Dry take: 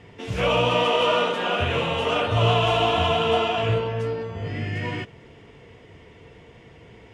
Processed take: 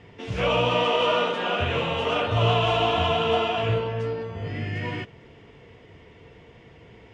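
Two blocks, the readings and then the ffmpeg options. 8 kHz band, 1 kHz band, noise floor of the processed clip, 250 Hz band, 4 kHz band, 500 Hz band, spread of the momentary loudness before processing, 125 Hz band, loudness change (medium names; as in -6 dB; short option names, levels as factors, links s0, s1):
no reading, -1.5 dB, -51 dBFS, -1.5 dB, -1.5 dB, -1.5 dB, 11 LU, -1.5 dB, -1.5 dB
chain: -af "lowpass=6400,volume=0.841"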